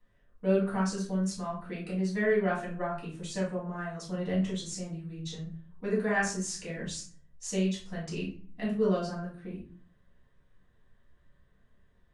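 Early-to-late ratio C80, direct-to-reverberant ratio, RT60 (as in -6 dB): 11.5 dB, -7.0 dB, 0.45 s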